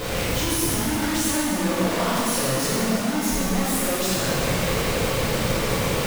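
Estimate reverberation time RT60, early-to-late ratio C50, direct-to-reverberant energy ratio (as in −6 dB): 2.3 s, −3.0 dB, −8.5 dB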